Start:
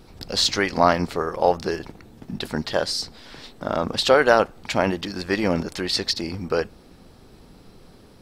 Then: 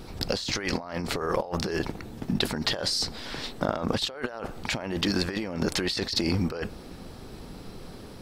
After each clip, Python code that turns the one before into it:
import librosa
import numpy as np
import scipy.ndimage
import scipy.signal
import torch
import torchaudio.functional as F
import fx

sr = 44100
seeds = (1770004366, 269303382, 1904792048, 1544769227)

y = fx.over_compress(x, sr, threshold_db=-30.0, ratio=-1.0)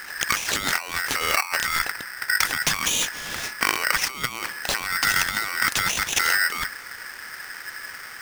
y = x * np.sign(np.sin(2.0 * np.pi * 1700.0 * np.arange(len(x)) / sr))
y = y * 10.0 ** (4.5 / 20.0)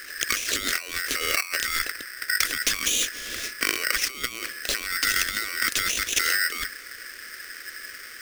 y = fx.fixed_phaser(x, sr, hz=360.0, stages=4)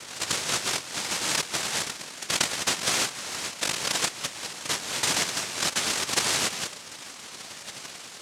y = fx.noise_vocoder(x, sr, seeds[0], bands=1)
y = y * 10.0 ** (-1.0 / 20.0)